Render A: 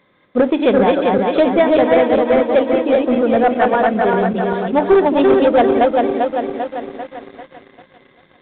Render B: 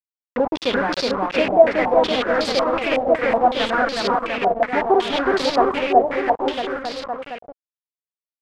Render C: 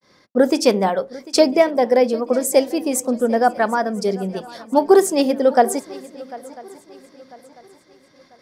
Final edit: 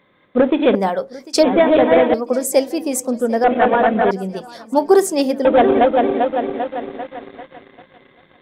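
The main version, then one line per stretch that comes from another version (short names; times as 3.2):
A
0.75–1.43 from C
2.14–3.44 from C
4.11–5.45 from C
not used: B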